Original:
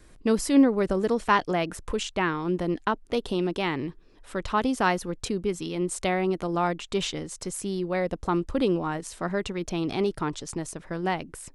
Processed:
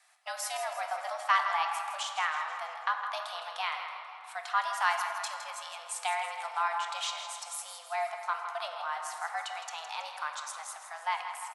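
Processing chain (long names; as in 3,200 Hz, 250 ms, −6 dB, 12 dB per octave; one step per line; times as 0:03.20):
Butterworth high-pass 560 Hz 48 dB per octave
frequency shifter +150 Hz
repeating echo 162 ms, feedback 52%, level −10.5 dB
on a send at −4 dB: convolution reverb RT60 3.3 s, pre-delay 3 ms
on the sum: level −4 dB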